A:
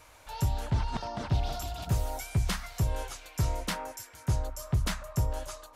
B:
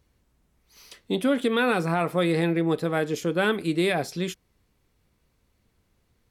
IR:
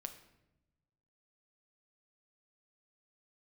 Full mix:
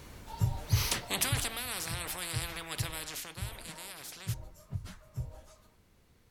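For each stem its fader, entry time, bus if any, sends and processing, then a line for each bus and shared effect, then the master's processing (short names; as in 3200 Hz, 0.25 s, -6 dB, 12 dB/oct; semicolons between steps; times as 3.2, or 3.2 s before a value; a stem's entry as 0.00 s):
-3.0 dB, 0.00 s, no send, phase scrambler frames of 50 ms; bell 120 Hz +9.5 dB 0.86 oct; auto duck -14 dB, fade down 1.75 s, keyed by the second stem
1.21 s -0.5 dB -> 1.6 s -7 dB -> 2.88 s -7 dB -> 3.5 s -15.5 dB, 0.00 s, no send, de-hum 56.72 Hz, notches 6; spectral compressor 10:1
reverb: off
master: dry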